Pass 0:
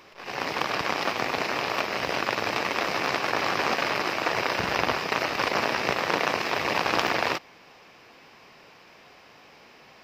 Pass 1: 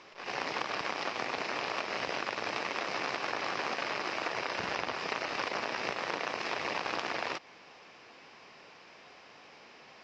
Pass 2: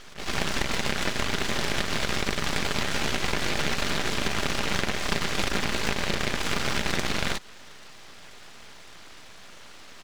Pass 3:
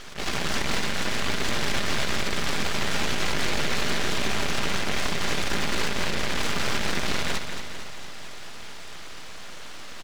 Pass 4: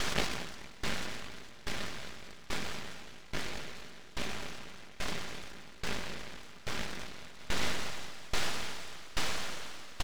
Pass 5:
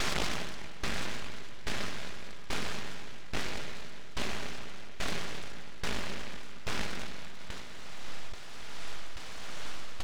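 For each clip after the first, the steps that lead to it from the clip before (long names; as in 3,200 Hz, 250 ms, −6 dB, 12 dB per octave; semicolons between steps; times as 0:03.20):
Butterworth low-pass 7,300 Hz 36 dB per octave; low-shelf EQ 130 Hz −9 dB; downward compressor, threshold −28 dBFS, peak gain reduction 10 dB; level −2 dB
comb filter 5 ms, depth 41%; full-wave rectification; level +9 dB
brickwall limiter −18.5 dBFS, peak gain reduction 11 dB; repeating echo 225 ms, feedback 57%, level −8 dB; level +5 dB
compressor whose output falls as the input rises −31 dBFS, ratio −1; tremolo with a ramp in dB decaying 1.2 Hz, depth 22 dB; level +3.5 dB
spring reverb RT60 3.5 s, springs 41/58 ms, chirp 65 ms, DRR 14 dB; compressor whose output falls as the input rises −28 dBFS, ratio −0.5; highs frequency-modulated by the lows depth 0.64 ms; level +1 dB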